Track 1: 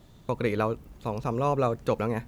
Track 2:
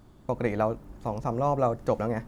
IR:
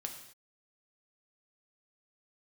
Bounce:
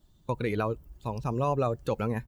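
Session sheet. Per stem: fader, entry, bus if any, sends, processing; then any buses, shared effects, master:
+1.5 dB, 0.00 s, no send, expander on every frequency bin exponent 1.5
-17.5 dB, 4.4 ms, polarity flipped, no send, none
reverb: none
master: peak limiter -18 dBFS, peak gain reduction 5 dB

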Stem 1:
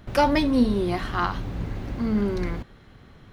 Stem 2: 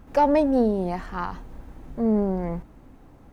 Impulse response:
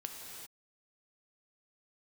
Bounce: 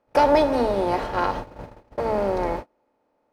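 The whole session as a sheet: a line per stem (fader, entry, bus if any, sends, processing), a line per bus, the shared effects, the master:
-6.0 dB, 0.00 s, send -12.5 dB, none
+0.5 dB, 0.00 s, send -7 dB, spectral levelling over time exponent 0.4; high-pass 380 Hz 12 dB/octave; upward expansion 1.5:1, over -29 dBFS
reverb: on, pre-delay 3 ms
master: gate -28 dBFS, range -34 dB

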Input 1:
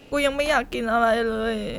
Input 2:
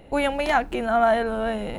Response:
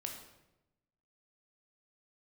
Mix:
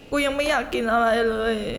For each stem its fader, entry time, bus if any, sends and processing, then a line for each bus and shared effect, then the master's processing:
0.0 dB, 0.00 s, send -8 dB, none
-16.0 dB, 2.6 ms, no send, tilt shelf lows +10 dB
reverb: on, RT60 0.95 s, pre-delay 14 ms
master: peak limiter -11.5 dBFS, peak gain reduction 5.5 dB

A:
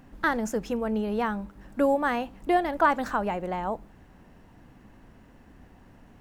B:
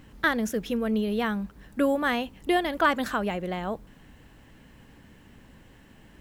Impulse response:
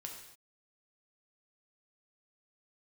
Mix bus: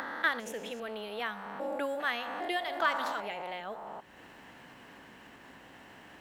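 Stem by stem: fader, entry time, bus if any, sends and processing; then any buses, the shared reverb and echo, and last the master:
+1.5 dB, 0.00 s, no send, spectrogram pixelated in time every 400 ms
-1.0 dB, 0.00 s, polarity flipped, no send, none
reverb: none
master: upward compressor, threshold -33 dBFS; high-pass 970 Hz 6 dB/octave; treble shelf 4.7 kHz -9.5 dB

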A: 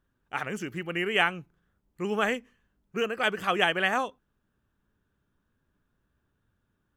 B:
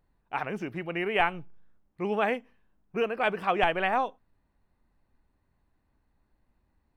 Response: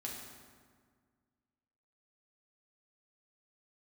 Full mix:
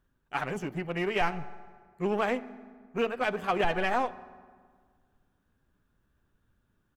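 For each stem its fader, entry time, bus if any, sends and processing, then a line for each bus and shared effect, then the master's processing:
+1.0 dB, 0.00 s, no send, auto duck -10 dB, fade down 0.90 s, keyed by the second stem
+2.0 dB, 9.3 ms, polarity flipped, send -13 dB, tilt EQ -2 dB/octave; power-law waveshaper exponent 1.4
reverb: on, RT60 1.7 s, pre-delay 4 ms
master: peak limiter -16.5 dBFS, peak gain reduction 10 dB

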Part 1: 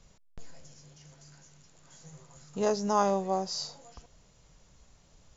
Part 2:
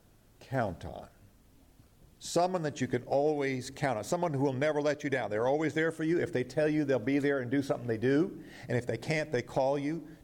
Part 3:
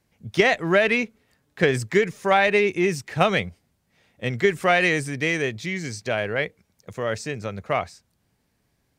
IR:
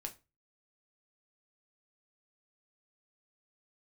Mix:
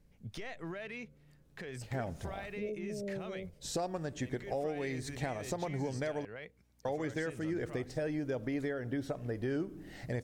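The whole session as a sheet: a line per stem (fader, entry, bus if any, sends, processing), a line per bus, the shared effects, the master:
-7.0 dB, 0.00 s, no send, steep low-pass 570 Hz 72 dB/octave
-1.5 dB, 1.40 s, muted 6.25–6.85 s, no send, expander -51 dBFS; bass shelf 85 Hz +10 dB
-7.5 dB, 0.00 s, no send, compression 5:1, threshold -29 dBFS, peak gain reduction 14.5 dB; peak limiter -27 dBFS, peak gain reduction 11 dB; hum 60 Hz, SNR 25 dB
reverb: none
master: compression 2:1, threshold -37 dBFS, peak gain reduction 7.5 dB

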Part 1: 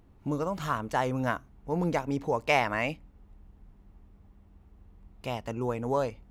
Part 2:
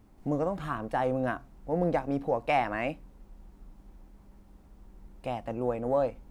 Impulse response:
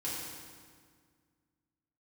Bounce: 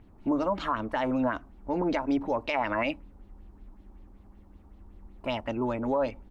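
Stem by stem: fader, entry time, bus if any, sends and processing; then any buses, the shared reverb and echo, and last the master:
0.0 dB, 0.00 s, no send, LFO low-pass sine 5.3 Hz 890–4300 Hz
-3.5 dB, 3.2 ms, no send, tilt shelf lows +5.5 dB, about 740 Hz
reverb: none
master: peak limiter -18 dBFS, peak gain reduction 10.5 dB

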